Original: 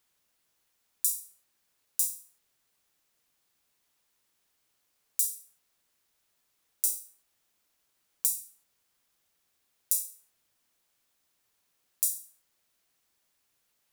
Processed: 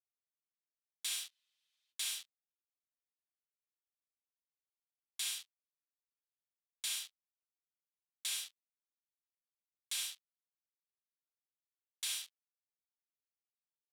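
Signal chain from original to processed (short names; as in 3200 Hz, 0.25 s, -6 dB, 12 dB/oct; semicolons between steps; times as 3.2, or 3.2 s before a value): in parallel at 0 dB: negative-ratio compressor -34 dBFS, ratio -1; on the sum: fuzz box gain 36 dB, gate -39 dBFS; band-pass 3400 Hz, Q 2.7; spectral freeze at 1.32, 0.59 s; gain -5.5 dB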